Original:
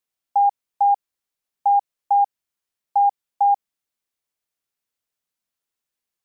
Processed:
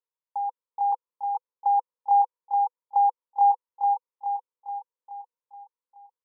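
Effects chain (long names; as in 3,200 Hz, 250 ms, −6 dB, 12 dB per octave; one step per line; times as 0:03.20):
0:00.92–0:03.51: dynamic equaliser 750 Hz, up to +5 dB, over −30 dBFS, Q 1.1
pair of resonant band-passes 690 Hz, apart 0.93 octaves
repeating echo 425 ms, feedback 54%, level −3 dB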